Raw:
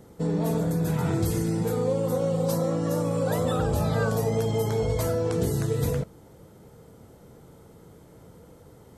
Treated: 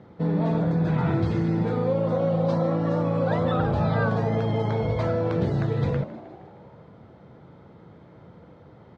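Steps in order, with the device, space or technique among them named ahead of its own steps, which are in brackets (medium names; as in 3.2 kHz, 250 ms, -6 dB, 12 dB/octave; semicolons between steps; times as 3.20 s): frequency-shifting delay pedal into a guitar cabinet (frequency-shifting echo 156 ms, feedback 59%, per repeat +87 Hz, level -16.5 dB; cabinet simulation 92–3500 Hz, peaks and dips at 270 Hz -3 dB, 440 Hz -6 dB, 2.9 kHz -5 dB); trim +3.5 dB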